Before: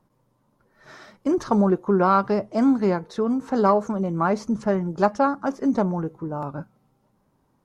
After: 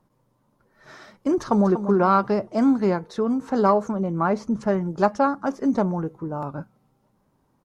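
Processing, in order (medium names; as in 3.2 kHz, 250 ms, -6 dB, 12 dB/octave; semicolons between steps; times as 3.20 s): 1.39–1.83 s: echo throw 240 ms, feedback 35%, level -11 dB; 3.90–4.61 s: treble shelf 4.1 kHz -7 dB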